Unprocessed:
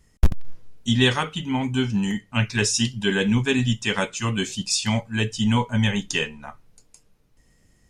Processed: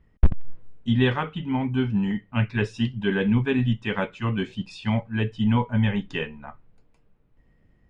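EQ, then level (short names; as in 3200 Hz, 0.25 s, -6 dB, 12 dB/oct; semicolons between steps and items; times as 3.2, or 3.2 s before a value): air absorption 480 m; 0.0 dB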